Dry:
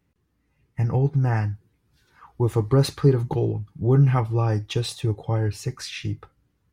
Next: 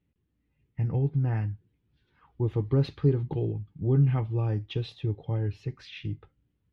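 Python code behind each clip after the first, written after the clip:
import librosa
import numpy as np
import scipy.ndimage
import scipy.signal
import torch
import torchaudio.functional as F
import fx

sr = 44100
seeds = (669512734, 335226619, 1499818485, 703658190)

y = fx.curve_eq(x, sr, hz=(280.0, 1200.0, 3200.0, 8400.0), db=(0, -9, -1, -29))
y = y * librosa.db_to_amplitude(-5.0)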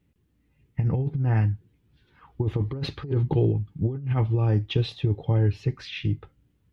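y = fx.over_compress(x, sr, threshold_db=-27.0, ratio=-0.5)
y = y * librosa.db_to_amplitude(5.5)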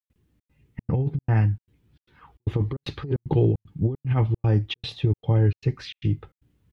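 y = fx.step_gate(x, sr, bpm=152, pattern='.xxx.xxx', floor_db=-60.0, edge_ms=4.5)
y = y * librosa.db_to_amplitude(2.0)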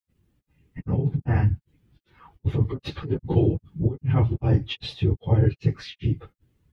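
y = fx.phase_scramble(x, sr, seeds[0], window_ms=50)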